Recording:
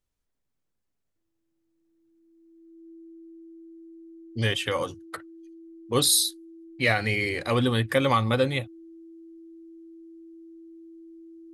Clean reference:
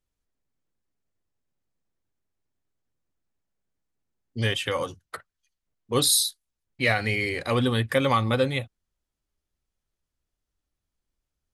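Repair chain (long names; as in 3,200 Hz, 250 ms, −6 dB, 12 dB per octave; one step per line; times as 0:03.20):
notch filter 330 Hz, Q 30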